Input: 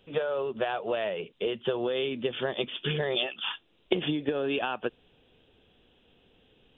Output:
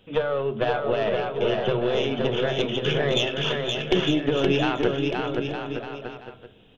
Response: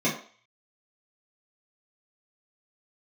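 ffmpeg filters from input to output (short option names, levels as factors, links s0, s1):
-filter_complex "[0:a]aeval=exprs='(tanh(7.08*val(0)+0.6)-tanh(0.6))/7.08':c=same,aecho=1:1:520|910|1202|1422|1586:0.631|0.398|0.251|0.158|0.1,asplit=2[s0][s1];[1:a]atrim=start_sample=2205,asetrate=26901,aresample=44100[s2];[s1][s2]afir=irnorm=-1:irlink=0,volume=0.0631[s3];[s0][s3]amix=inputs=2:normalize=0,volume=2.11"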